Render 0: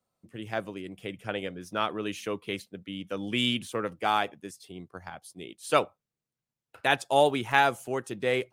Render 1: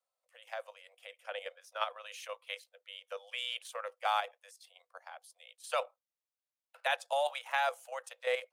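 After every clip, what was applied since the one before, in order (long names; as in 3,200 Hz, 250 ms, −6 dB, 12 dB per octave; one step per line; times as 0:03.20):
Chebyshev high-pass filter 490 Hz, order 10
output level in coarse steps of 9 dB
level −2.5 dB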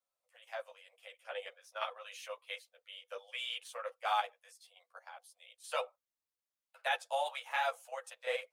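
string-ensemble chorus
level +1 dB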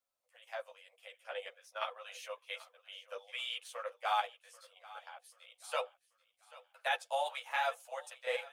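feedback echo with a high-pass in the loop 786 ms, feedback 45%, high-pass 560 Hz, level −18.5 dB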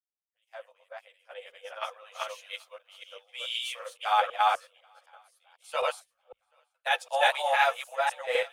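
delay that plays each chunk backwards 253 ms, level 0 dB
multiband upward and downward expander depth 100%
level +4.5 dB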